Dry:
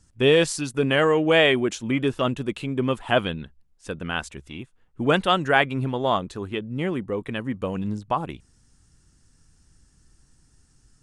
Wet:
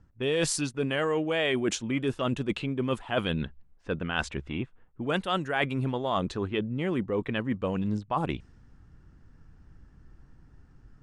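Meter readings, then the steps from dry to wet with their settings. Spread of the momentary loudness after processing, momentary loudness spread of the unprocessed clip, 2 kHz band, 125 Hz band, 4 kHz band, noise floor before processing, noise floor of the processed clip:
8 LU, 14 LU, -7.5 dB, -3.5 dB, -7.0 dB, -61 dBFS, -58 dBFS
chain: low-pass opened by the level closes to 1600 Hz, open at -19 dBFS; reverse; compressor 6:1, threshold -31 dBFS, peak gain reduction 16.5 dB; reverse; gain +5.5 dB

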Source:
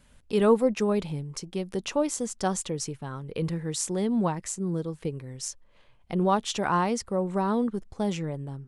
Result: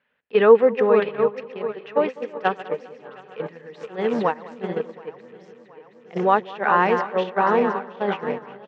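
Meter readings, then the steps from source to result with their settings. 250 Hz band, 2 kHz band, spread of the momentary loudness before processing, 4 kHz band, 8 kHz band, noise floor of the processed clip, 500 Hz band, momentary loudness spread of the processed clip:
-1.5 dB, +11.5 dB, 11 LU, -2.0 dB, under -25 dB, -51 dBFS, +8.5 dB, 18 LU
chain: regenerating reverse delay 0.362 s, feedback 77%, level -7 dB; gate -25 dBFS, range -17 dB; bell 1500 Hz +5.5 dB 1.1 oct; in parallel at -2.5 dB: limiter -18.5 dBFS, peak gain reduction 9.5 dB; on the sum: speaker cabinet 270–3400 Hz, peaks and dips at 310 Hz -4 dB, 460 Hz +8 dB, 780 Hz +3 dB, 1800 Hz +7 dB, 2600 Hz +5 dB; on a send: feedback echo 0.2 s, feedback 51%, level -20.5 dB

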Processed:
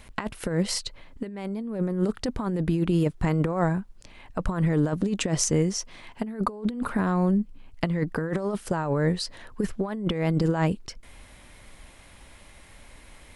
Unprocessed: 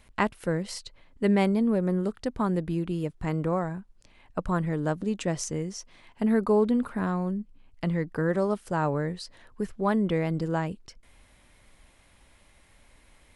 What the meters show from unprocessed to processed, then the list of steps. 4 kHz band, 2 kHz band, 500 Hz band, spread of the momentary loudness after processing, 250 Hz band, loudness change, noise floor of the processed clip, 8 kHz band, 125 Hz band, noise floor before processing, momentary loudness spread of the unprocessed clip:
+7.5 dB, +0.5 dB, -1.0 dB, 11 LU, +1.0 dB, +1.0 dB, -51 dBFS, +8.5 dB, +4.0 dB, -60 dBFS, 13 LU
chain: negative-ratio compressor -29 dBFS, ratio -0.5; gain +5 dB

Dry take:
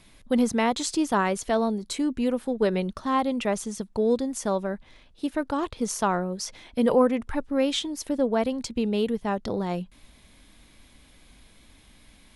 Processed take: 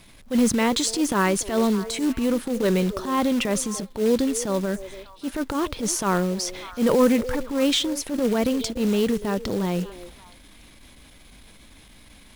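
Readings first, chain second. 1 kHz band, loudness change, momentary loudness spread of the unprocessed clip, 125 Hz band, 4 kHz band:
-0.5 dB, +3.0 dB, 8 LU, +5.5 dB, +6.0 dB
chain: transient shaper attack -10 dB, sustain +4 dB; in parallel at -11 dB: overloaded stage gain 17 dB; on the sum: dynamic EQ 750 Hz, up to -7 dB, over -40 dBFS, Q 2.4; delay with a stepping band-pass 0.29 s, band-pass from 450 Hz, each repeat 1.4 oct, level -11.5 dB; short-mantissa float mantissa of 2-bit; gain +3 dB

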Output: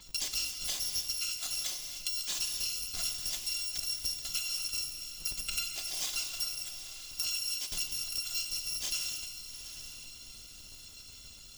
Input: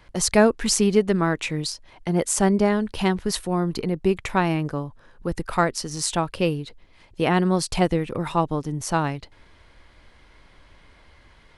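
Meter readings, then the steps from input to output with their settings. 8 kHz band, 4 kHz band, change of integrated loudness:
-5.0 dB, 0.0 dB, -10.0 dB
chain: FFT order left unsorted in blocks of 256 samples; band shelf 4600 Hz +11 dB; compressor 12:1, threshold -28 dBFS, peak gain reduction 23.5 dB; on a send: diffused feedback echo 0.851 s, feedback 42%, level -11 dB; on the sum: non-linear reverb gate 0.33 s flat, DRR 5 dB; gain -4.5 dB

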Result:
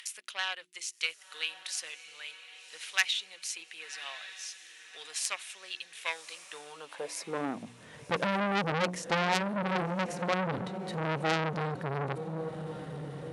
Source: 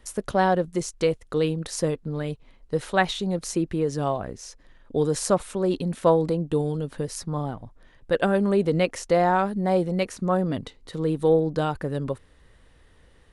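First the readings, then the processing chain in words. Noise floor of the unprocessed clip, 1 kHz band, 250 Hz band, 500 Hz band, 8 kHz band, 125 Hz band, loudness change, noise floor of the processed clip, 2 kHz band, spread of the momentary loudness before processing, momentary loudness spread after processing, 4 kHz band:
-56 dBFS, -7.5 dB, -11.5 dB, -13.5 dB, -2.5 dB, -10.0 dB, -8.5 dB, -55 dBFS, -0.5 dB, 10 LU, 15 LU, +2.0 dB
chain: high shelf 9000 Hz -2.5 dB; notches 60/120/180/240/300/360 Hz; upward compressor, threshold -31 dBFS; added harmonics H 3 -16 dB, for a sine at -7 dBFS; high-pass sweep 2500 Hz -> 140 Hz, 6.37–7.87; diffused feedback echo 1.121 s, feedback 44%, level -14 dB; core saturation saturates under 3900 Hz; gain +2 dB

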